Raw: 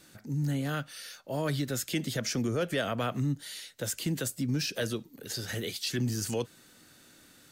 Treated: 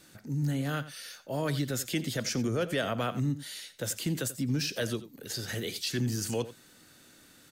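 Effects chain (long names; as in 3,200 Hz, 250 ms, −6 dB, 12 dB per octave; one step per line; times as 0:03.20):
slap from a distant wall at 15 metres, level −15 dB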